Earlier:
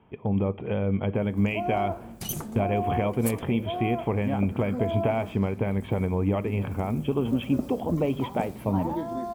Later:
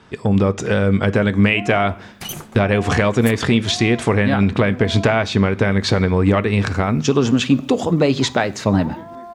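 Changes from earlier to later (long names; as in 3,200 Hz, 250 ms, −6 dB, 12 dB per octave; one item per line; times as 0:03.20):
speech: remove Chebyshev low-pass with heavy ripple 3,300 Hz, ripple 9 dB
first sound −9.0 dB
master: add parametric band 1,700 Hz +12.5 dB 2.7 octaves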